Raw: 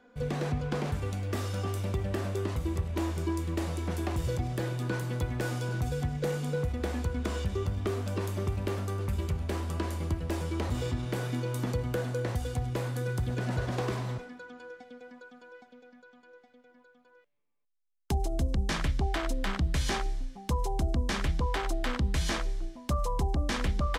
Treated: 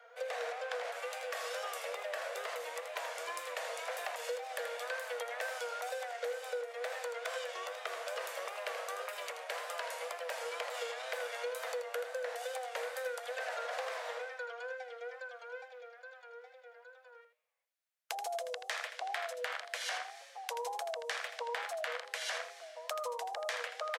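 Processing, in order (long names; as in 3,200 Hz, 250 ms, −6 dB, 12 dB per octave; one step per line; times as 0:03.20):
tape wow and flutter 98 cents
Chebyshev high-pass with heavy ripple 470 Hz, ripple 6 dB
downward compressor 5 to 1, threshold −44 dBFS, peak gain reduction 12 dB
on a send: single-tap delay 81 ms −9 dB
on the sum: level +7.5 dB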